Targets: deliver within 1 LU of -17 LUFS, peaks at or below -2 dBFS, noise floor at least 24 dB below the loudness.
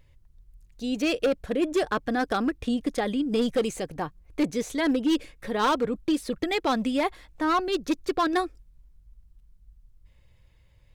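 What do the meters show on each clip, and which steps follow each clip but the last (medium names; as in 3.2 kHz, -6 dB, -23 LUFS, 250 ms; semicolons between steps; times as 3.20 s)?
clipped samples 1.4%; clipping level -18.0 dBFS; loudness -27.0 LUFS; peak level -18.0 dBFS; loudness target -17.0 LUFS
-> clip repair -18 dBFS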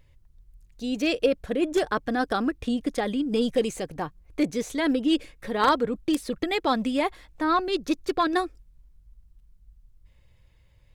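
clipped samples 0.0%; loudness -26.5 LUFS; peak level -9.0 dBFS; loudness target -17.0 LUFS
-> trim +9.5 dB; peak limiter -2 dBFS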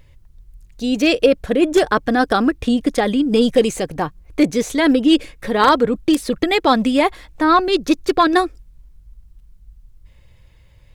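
loudness -17.0 LUFS; peak level -2.0 dBFS; noise floor -49 dBFS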